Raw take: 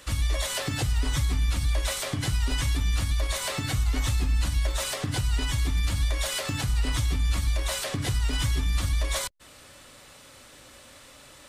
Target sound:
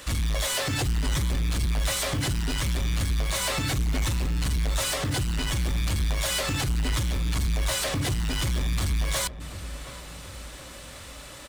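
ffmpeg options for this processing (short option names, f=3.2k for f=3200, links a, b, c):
-filter_complex "[0:a]asoftclip=type=tanh:threshold=-28.5dB,acontrast=57,acrusher=bits=5:mode=log:mix=0:aa=0.000001,asplit=2[a][b];[b]adelay=723,lowpass=f=1.8k:p=1,volume=-13dB,asplit=2[c][d];[d]adelay=723,lowpass=f=1.8k:p=1,volume=0.55,asplit=2[e][f];[f]adelay=723,lowpass=f=1.8k:p=1,volume=0.55,asplit=2[g][h];[h]adelay=723,lowpass=f=1.8k:p=1,volume=0.55,asplit=2[i][j];[j]adelay=723,lowpass=f=1.8k:p=1,volume=0.55,asplit=2[k][l];[l]adelay=723,lowpass=f=1.8k:p=1,volume=0.55[m];[c][e][g][i][k][m]amix=inputs=6:normalize=0[n];[a][n]amix=inputs=2:normalize=0"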